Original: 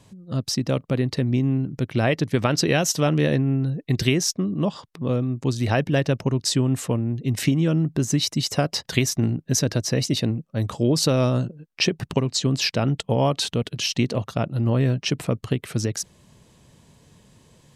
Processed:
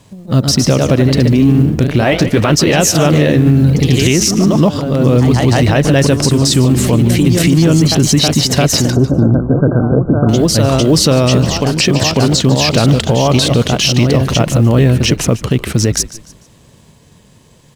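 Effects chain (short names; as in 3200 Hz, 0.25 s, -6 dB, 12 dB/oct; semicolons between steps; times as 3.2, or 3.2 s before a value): G.711 law mismatch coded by A; echoes that change speed 0.135 s, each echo +1 st, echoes 3, each echo -6 dB; 8.9–10.29 brick-wall FIR low-pass 1600 Hz; frequency-shifting echo 0.148 s, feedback 34%, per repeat -52 Hz, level -17 dB; maximiser +16.5 dB; gain -1 dB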